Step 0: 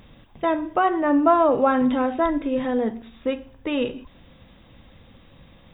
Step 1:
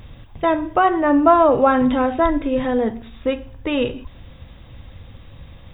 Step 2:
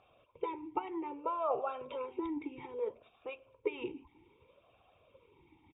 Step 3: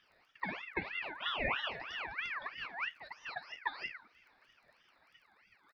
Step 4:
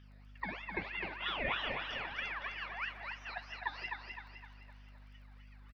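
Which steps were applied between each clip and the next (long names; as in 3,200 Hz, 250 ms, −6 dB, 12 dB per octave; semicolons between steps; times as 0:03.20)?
low shelf with overshoot 140 Hz +7 dB, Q 1.5; level +4.5 dB
comb filter 2.2 ms, depth 52%; harmonic and percussive parts rebalanced harmonic −16 dB; formant filter swept between two vowels a-u 0.62 Hz; level +1 dB
delay with pitch and tempo change per echo 102 ms, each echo +2 semitones, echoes 2, each echo −6 dB; surface crackle 21 per second −58 dBFS; ring modulator whose carrier an LFO sweeps 1,800 Hz, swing 35%, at 3.1 Hz
mains hum 50 Hz, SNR 13 dB; repeating echo 257 ms, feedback 43%, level −5 dB; on a send at −18 dB: convolution reverb RT60 2.5 s, pre-delay 95 ms; on the sum: level −1.5 dB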